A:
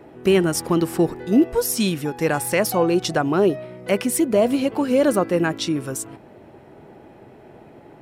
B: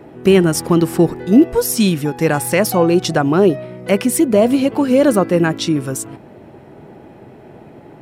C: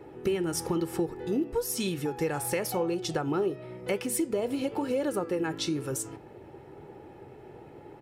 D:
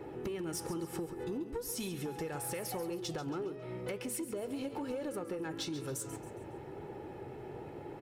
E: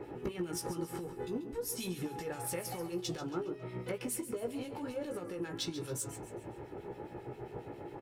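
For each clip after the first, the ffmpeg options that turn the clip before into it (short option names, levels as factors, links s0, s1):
-af "equalizer=f=160:t=o:w=1.8:g=4,volume=1.58"
-af "aecho=1:1:2.3:0.53,acompressor=threshold=0.126:ratio=4,flanger=delay=9.3:depth=6.9:regen=-80:speed=1:shape=triangular,volume=0.596"
-af "acompressor=threshold=0.0141:ratio=6,asoftclip=type=tanh:threshold=0.0237,aecho=1:1:137|274|411|548:0.251|0.1|0.0402|0.0161,volume=1.26"
-filter_complex "[0:a]asplit=2[s0][s1];[s1]adelay=17,volume=0.531[s2];[s0][s2]amix=inputs=2:normalize=0,acrossover=split=2100[s3][s4];[s3]aeval=exprs='val(0)*(1-0.7/2+0.7/2*cos(2*PI*7.4*n/s))':c=same[s5];[s4]aeval=exprs='val(0)*(1-0.7/2-0.7/2*cos(2*PI*7.4*n/s))':c=same[s6];[s5][s6]amix=inputs=2:normalize=0,volume=1.33"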